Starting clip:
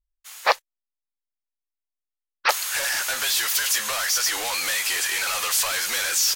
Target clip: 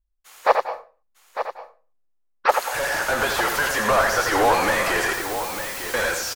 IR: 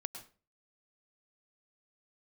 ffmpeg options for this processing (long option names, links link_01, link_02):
-filter_complex "[0:a]tiltshelf=frequency=1200:gain=7,acrossover=split=1700[link_01][link_02];[link_01]dynaudnorm=framelen=150:gausssize=7:maxgain=12dB[link_03];[link_02]alimiter=limit=-21.5dB:level=0:latency=1:release=26[link_04];[link_03][link_04]amix=inputs=2:normalize=0,asettb=1/sr,asplit=3[link_05][link_06][link_07];[link_05]atrim=end=5.134[link_08];[link_06]atrim=start=5.13:end=5.94,asetpts=PTS-STARTPTS,afade=type=in:duration=0.004:curve=qsin,afade=type=out:start_time=0.806:duration=0.004:curve=qsin,aeval=exprs='(mod(29.9*val(0)+1,2)-1)/29.9':channel_layout=same[link_09];[link_07]atrim=start=5.936[link_10];[link_08][link_09]acrossfade=duration=0.004:curve1=hsin:curve2=qsin[link_11];[link_11][link_10]acrossfade=duration=0.004:curve1=qsin:curve2=hsin,aecho=1:1:902:0.316,asplit=2[link_12][link_13];[1:a]atrim=start_sample=2205,adelay=84[link_14];[link_13][link_14]afir=irnorm=-1:irlink=0,volume=-3.5dB[link_15];[link_12][link_15]amix=inputs=2:normalize=0,volume=-1dB"